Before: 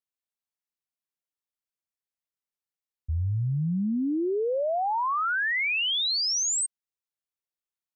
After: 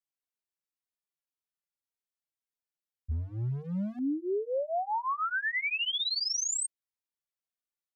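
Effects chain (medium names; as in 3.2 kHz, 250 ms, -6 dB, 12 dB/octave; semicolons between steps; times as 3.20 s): 3.11–3.99 s: overload inside the chain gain 26.5 dB; endless flanger 3 ms -1.8 Hz; trim -2 dB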